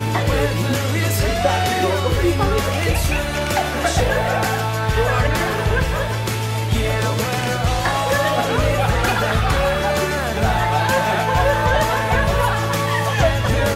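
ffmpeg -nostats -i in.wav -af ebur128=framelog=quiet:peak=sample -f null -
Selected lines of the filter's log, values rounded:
Integrated loudness:
  I:         -18.7 LUFS
  Threshold: -28.7 LUFS
Loudness range:
  LRA:         1.8 LU
  Threshold: -38.8 LUFS
  LRA low:   -19.7 LUFS
  LRA high:  -17.9 LUFS
Sample peak:
  Peak:       -3.8 dBFS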